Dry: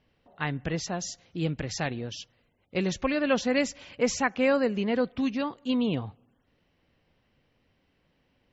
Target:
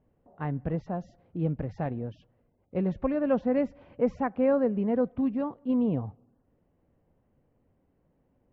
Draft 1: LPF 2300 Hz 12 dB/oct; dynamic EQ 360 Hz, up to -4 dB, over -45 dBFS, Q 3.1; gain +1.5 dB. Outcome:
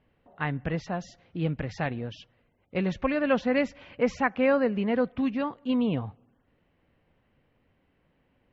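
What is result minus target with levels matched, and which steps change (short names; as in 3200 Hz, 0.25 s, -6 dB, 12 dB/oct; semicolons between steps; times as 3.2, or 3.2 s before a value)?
2000 Hz band +11.5 dB
change: LPF 810 Hz 12 dB/oct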